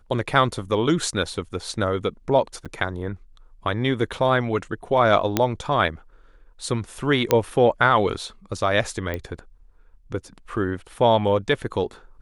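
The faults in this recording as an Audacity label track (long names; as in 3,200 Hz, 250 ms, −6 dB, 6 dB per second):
2.650000	2.660000	drop-out 6.9 ms
5.370000	5.370000	click −4 dBFS
7.310000	7.310000	click −3 dBFS
9.140000	9.140000	click −15 dBFS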